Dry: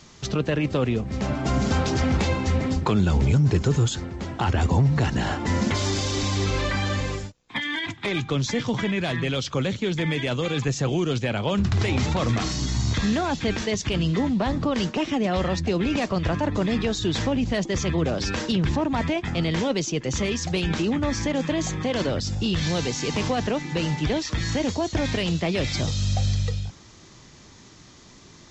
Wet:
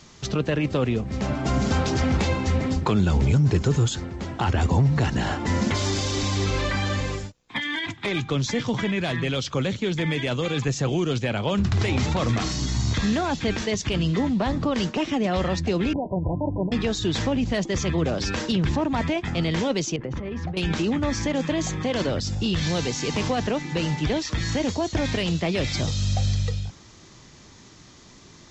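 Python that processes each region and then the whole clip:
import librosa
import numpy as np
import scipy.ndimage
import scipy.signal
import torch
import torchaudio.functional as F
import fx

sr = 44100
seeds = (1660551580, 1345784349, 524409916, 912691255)

y = fx.chain(x, sr, fx.cheby1_lowpass(hz=1000.0, order=10),
    fx.notch_comb(f0_hz=220.0), at=(15.93, 16.72))
y = fx.chain(y, sr, fx.lowpass(hz=1500.0, slope=12),
    fx.over_compress(threshold_db=-30.0, ratio=-1.0), at=(19.96, 20.57))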